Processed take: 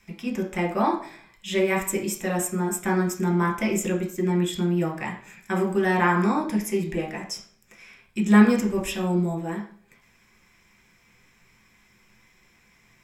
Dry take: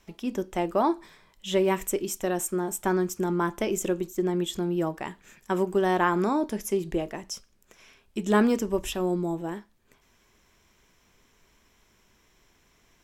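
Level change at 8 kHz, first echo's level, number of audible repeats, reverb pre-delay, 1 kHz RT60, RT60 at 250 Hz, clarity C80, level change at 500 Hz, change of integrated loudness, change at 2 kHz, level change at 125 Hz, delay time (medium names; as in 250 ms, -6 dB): +2.5 dB, no echo, no echo, 3 ms, 0.50 s, 0.60 s, 13.0 dB, 0.0 dB, +3.0 dB, +6.0 dB, +7.0 dB, no echo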